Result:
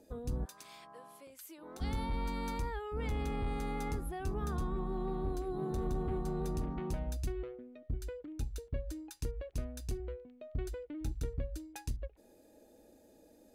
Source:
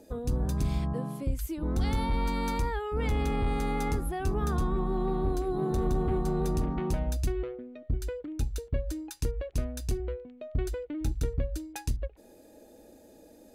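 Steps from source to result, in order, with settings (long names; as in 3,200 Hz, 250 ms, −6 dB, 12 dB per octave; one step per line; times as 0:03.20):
0:00.44–0:01.80: high-pass filter 1,100 Hz → 490 Hz 12 dB per octave
level −7.5 dB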